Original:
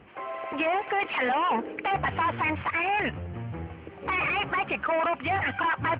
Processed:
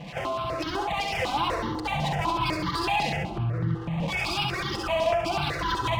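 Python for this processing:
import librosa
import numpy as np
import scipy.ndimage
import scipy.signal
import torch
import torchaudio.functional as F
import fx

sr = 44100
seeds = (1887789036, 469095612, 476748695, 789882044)

p1 = fx.lower_of_two(x, sr, delay_ms=5.9)
p2 = fx.graphic_eq(p1, sr, hz=(125, 250, 500, 1000, 2000), db=(3, -8, -5, -5, -5))
p3 = p2 + fx.echo_feedback(p2, sr, ms=67, feedback_pct=43, wet_db=-4, dry=0)
p4 = fx.rev_freeverb(p3, sr, rt60_s=0.82, hf_ratio=0.3, predelay_ms=25, drr_db=6.5)
p5 = fx.over_compress(p4, sr, threshold_db=-45.0, ratio=-1.0)
p6 = p4 + (p5 * 10.0 ** (1.0 / 20.0))
p7 = scipy.signal.sosfilt(scipy.signal.butter(2, 61.0, 'highpass', fs=sr, output='sos'), p6)
p8 = fx.dynamic_eq(p7, sr, hz=1600.0, q=1.9, threshold_db=-49.0, ratio=4.0, max_db=-7)
p9 = fx.lowpass(p8, sr, hz=3500.0, slope=6)
p10 = fx.phaser_held(p9, sr, hz=8.0, low_hz=370.0, high_hz=2500.0)
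y = p10 * 10.0 ** (8.5 / 20.0)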